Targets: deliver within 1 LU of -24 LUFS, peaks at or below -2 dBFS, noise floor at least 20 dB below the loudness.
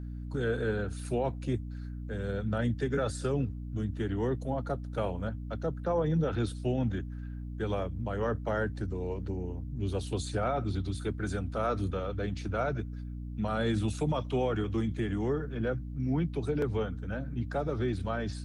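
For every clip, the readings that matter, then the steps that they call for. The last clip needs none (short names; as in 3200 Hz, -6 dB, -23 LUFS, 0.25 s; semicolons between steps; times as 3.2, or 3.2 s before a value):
hum 60 Hz; harmonics up to 300 Hz; hum level -36 dBFS; loudness -33.0 LUFS; peak -19.0 dBFS; loudness target -24.0 LUFS
-> de-hum 60 Hz, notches 5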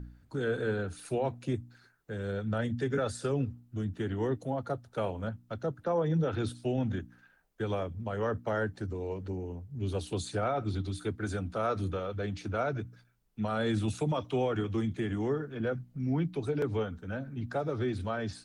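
hum none; loudness -33.5 LUFS; peak -20.0 dBFS; loudness target -24.0 LUFS
-> gain +9.5 dB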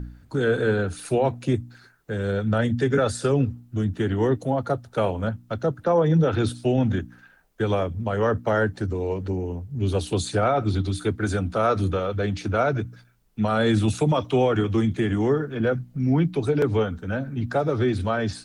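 loudness -24.0 LUFS; peak -10.5 dBFS; noise floor -55 dBFS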